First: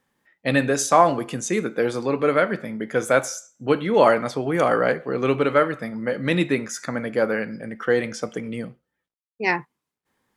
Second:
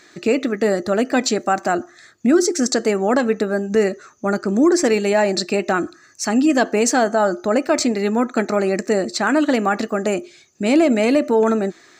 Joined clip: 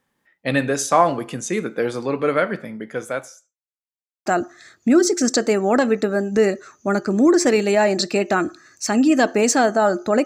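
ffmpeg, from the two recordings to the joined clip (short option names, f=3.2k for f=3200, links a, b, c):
-filter_complex "[0:a]apad=whole_dur=10.25,atrim=end=10.25,asplit=2[a][b];[a]atrim=end=3.57,asetpts=PTS-STARTPTS,afade=t=out:st=2.53:d=1.04[c];[b]atrim=start=3.57:end=4.26,asetpts=PTS-STARTPTS,volume=0[d];[1:a]atrim=start=1.64:end=7.63,asetpts=PTS-STARTPTS,afade=t=in:d=0.004:c=hsin[e];[c][d][e]concat=n=3:v=0:a=1"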